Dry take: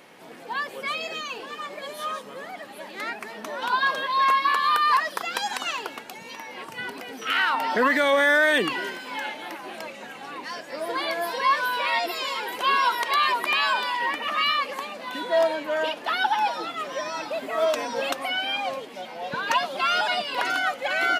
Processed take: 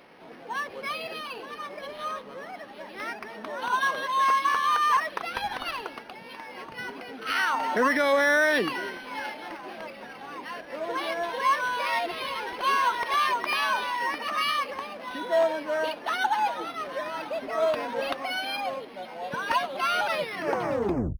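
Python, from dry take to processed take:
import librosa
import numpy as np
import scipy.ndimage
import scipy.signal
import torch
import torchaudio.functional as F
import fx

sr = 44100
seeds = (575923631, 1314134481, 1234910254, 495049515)

y = fx.tape_stop_end(x, sr, length_s=1.19)
y = np.interp(np.arange(len(y)), np.arange(len(y))[::6], y[::6])
y = y * 10.0 ** (-1.5 / 20.0)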